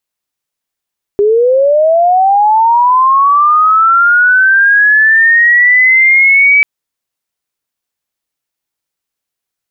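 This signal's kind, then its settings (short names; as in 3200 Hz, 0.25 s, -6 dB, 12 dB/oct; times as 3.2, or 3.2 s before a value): chirp linear 400 Hz -> 2300 Hz -5.5 dBFS -> -3.5 dBFS 5.44 s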